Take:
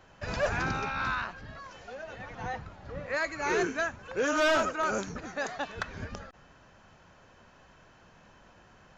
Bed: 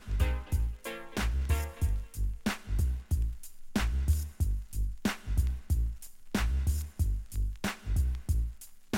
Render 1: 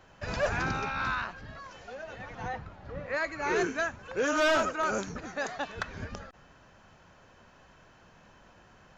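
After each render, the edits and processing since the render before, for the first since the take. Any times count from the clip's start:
0:02.48–0:03.56: low-pass filter 4,000 Hz 6 dB per octave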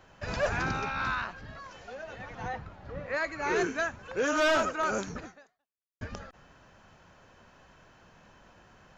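0:05.23–0:06.01: fade out exponential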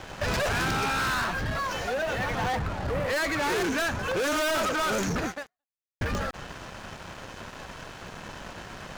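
leveller curve on the samples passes 5
downward compressor, threshold −26 dBFS, peak gain reduction 4 dB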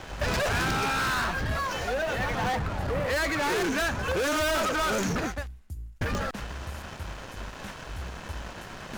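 mix in bed −9.5 dB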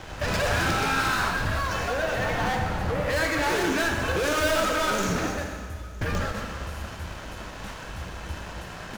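single-tap delay 961 ms −24 dB
dense smooth reverb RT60 1.9 s, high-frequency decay 0.95×, DRR 2 dB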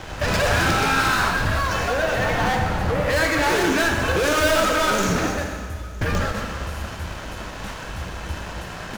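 level +5 dB

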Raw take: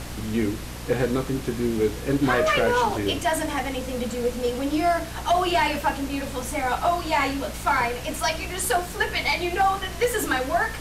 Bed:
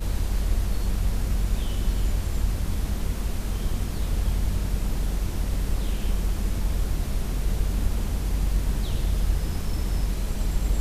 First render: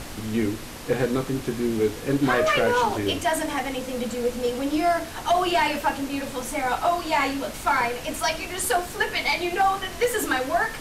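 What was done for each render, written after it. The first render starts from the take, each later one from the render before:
mains-hum notches 60/120/180 Hz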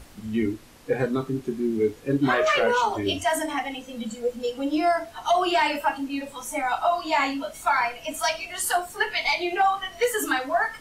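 noise reduction from a noise print 13 dB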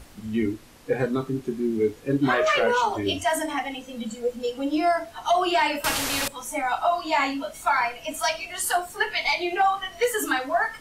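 0:05.84–0:06.28: every bin compressed towards the loudest bin 4 to 1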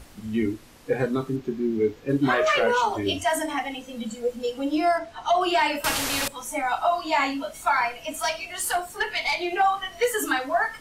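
0:01.36–0:02.09: parametric band 9,900 Hz −14 dB 0.71 octaves
0:04.98–0:05.41: high-frequency loss of the air 61 metres
0:08.03–0:09.52: tube saturation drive 16 dB, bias 0.2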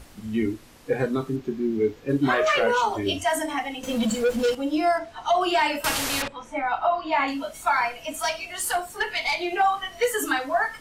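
0:03.83–0:04.55: leveller curve on the samples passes 3
0:06.22–0:07.28: low-pass filter 2,900 Hz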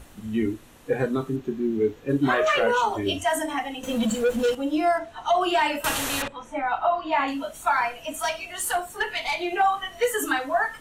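parametric band 4,900 Hz −8.5 dB 0.33 octaves
notch filter 2,200 Hz, Q 18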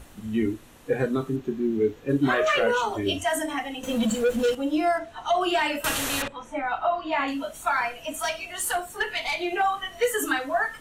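dynamic equaliser 900 Hz, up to −5 dB, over −36 dBFS, Q 2.6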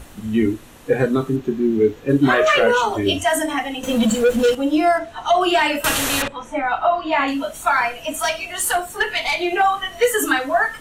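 level +7 dB

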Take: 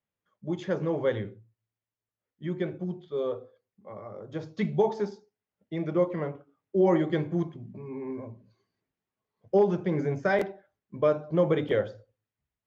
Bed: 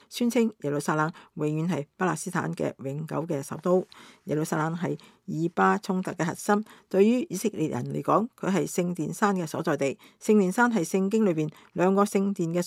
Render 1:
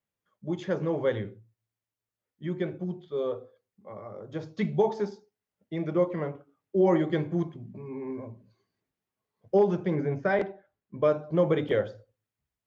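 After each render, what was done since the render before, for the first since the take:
0:09.95–0:11.01: high-frequency loss of the air 160 metres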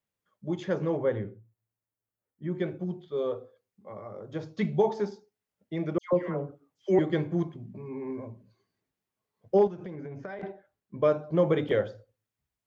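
0:00.97–0:02.55: parametric band 4,300 Hz −14.5 dB 1.6 octaves
0:05.98–0:06.99: all-pass dispersion lows, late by 147 ms, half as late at 1,600 Hz
0:09.67–0:10.43: downward compressor 16 to 1, threshold −35 dBFS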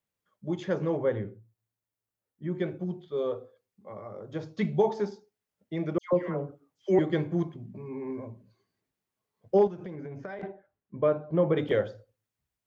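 0:10.46–0:11.57: high-frequency loss of the air 350 metres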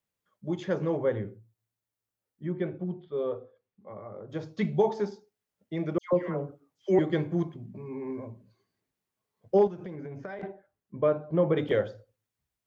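0:02.52–0:04.30: high-frequency loss of the air 260 metres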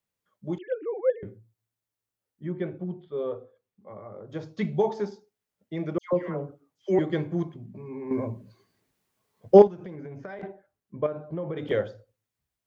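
0:00.58–0:01.23: three sine waves on the formant tracks
0:08.11–0:09.62: clip gain +9.5 dB
0:11.06–0:11.68: downward compressor 5 to 1, threshold −29 dBFS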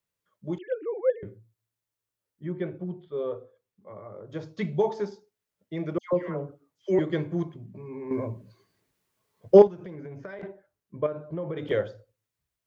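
parametric band 230 Hz −5.5 dB 0.31 octaves
notch filter 770 Hz, Q 12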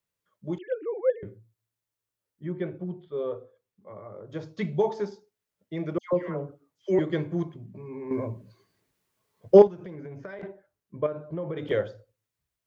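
no processing that can be heard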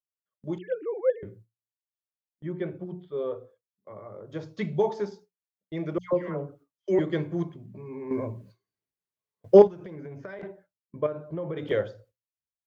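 mains-hum notches 60/120/180 Hz
noise gate with hold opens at −43 dBFS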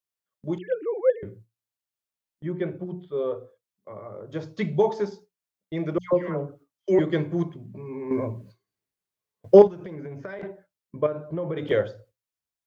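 level +3.5 dB
brickwall limiter −3 dBFS, peak gain reduction 2.5 dB

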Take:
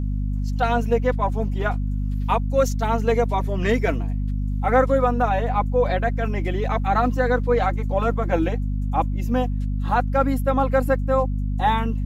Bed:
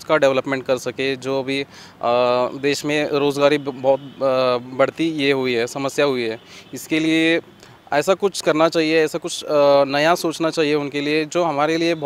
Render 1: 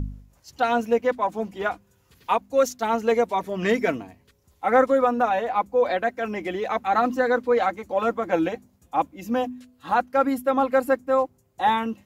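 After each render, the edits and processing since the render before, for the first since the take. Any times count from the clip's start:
hum removal 50 Hz, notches 5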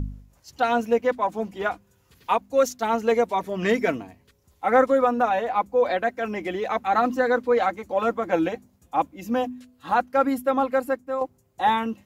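0:10.45–0:11.21: fade out, to −8 dB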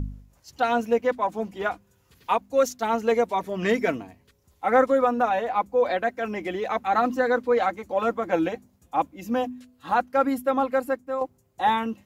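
level −1 dB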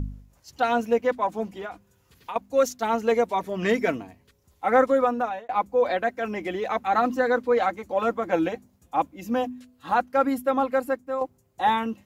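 0:01.53–0:02.36: downward compressor, threshold −31 dBFS
0:04.91–0:05.49: fade out equal-power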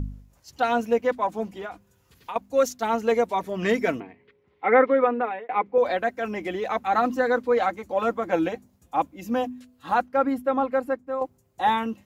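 0:04.00–0:05.78: loudspeaker in its box 150–3,200 Hz, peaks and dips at 420 Hz +10 dB, 620 Hz −4 dB, 2,100 Hz +9 dB
0:10.07–0:11.22: high-shelf EQ 4,000 Hz −12 dB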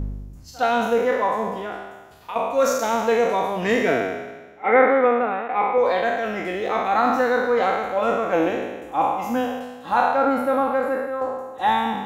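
peak hold with a decay on every bin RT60 1.28 s
echo ahead of the sound 62 ms −23.5 dB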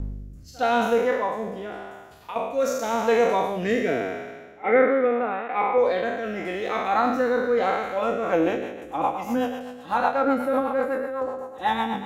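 rotating-speaker cabinet horn 0.85 Hz, later 8 Hz, at 0:07.86

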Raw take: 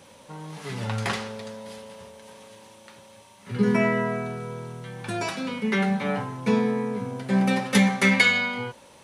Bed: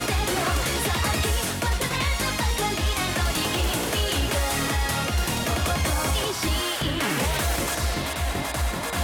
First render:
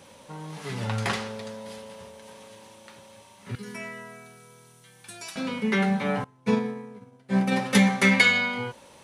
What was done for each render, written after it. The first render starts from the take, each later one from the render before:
0:03.55–0:05.36: first-order pre-emphasis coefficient 0.9
0:06.24–0:07.52: expander for the loud parts 2.5 to 1, over −34 dBFS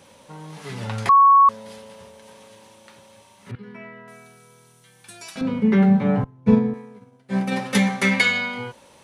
0:01.09–0:01.49: beep over 1,110 Hz −9 dBFS
0:03.51–0:04.08: high-frequency loss of the air 420 metres
0:05.41–0:06.74: spectral tilt −4 dB per octave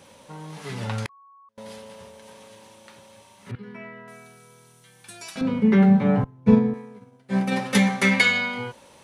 0:00.94–0:01.58: gate with flip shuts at −19 dBFS, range −40 dB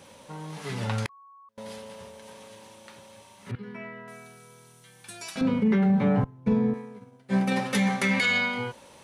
brickwall limiter −15.5 dBFS, peak gain reduction 11.5 dB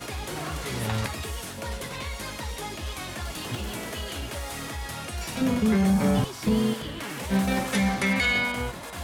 mix in bed −10 dB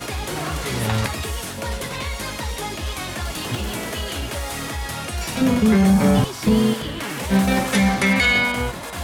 level +6.5 dB

